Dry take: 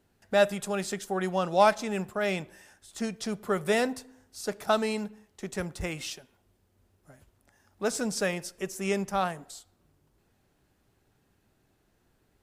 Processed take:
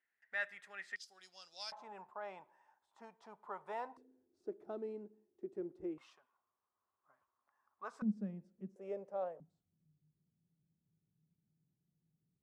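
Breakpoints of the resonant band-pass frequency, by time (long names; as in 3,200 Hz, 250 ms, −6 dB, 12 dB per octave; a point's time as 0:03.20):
resonant band-pass, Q 8.2
1,900 Hz
from 0:00.96 4,900 Hz
from 0:01.72 930 Hz
from 0:03.97 350 Hz
from 0:05.98 1,100 Hz
from 0:08.02 210 Hz
from 0:08.76 530 Hz
from 0:09.40 160 Hz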